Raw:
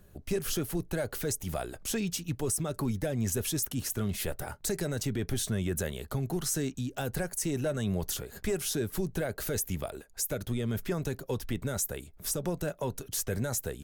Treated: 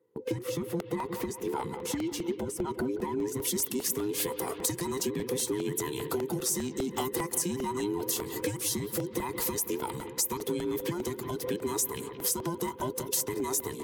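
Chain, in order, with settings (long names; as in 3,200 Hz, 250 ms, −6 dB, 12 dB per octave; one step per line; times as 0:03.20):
frequency inversion band by band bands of 500 Hz
low-shelf EQ 320 Hz +9 dB
noise gate with hold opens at −37 dBFS
high-shelf EQ 3,500 Hz −7.5 dB, from 0:03.42 +6.5 dB
bucket-brigade delay 176 ms, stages 4,096, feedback 70%, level −14 dB
downward compressor, threshold −30 dBFS, peak gain reduction 11 dB
Bessel high-pass filter 220 Hz, order 2
regular buffer underruns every 0.20 s, samples 64, repeat, from 0:00.80
level +4 dB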